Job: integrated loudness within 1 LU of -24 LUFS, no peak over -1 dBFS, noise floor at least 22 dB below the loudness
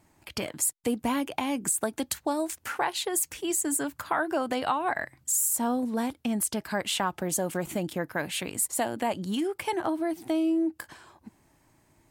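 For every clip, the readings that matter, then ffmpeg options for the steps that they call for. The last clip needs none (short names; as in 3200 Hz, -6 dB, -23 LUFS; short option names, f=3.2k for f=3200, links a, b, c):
loudness -29.0 LUFS; peak -14.0 dBFS; loudness target -24.0 LUFS
-> -af "volume=5dB"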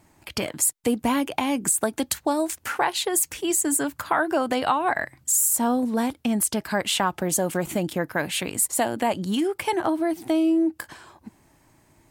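loudness -24.0 LUFS; peak -9.0 dBFS; noise floor -61 dBFS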